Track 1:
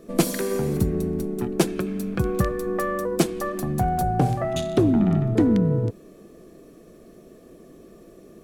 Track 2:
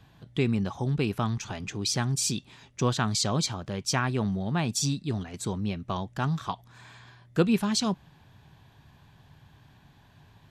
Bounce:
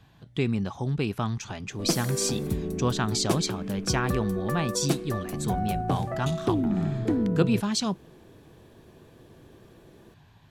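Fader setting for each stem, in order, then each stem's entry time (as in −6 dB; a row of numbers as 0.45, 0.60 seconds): −6.5, −0.5 decibels; 1.70, 0.00 seconds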